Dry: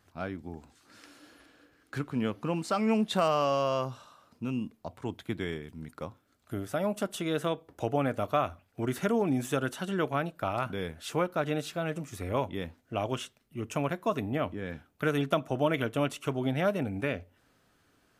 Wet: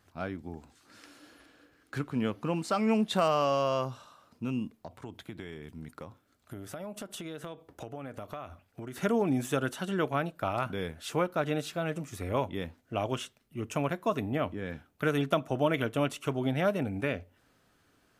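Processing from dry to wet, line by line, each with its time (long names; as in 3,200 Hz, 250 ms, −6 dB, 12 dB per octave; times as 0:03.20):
0:04.76–0:08.98: downward compressor, threshold −37 dBFS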